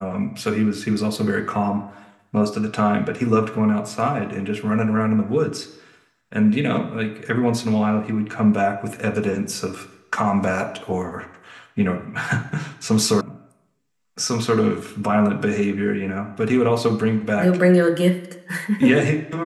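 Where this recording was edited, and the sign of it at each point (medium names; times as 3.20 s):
13.21 s: sound stops dead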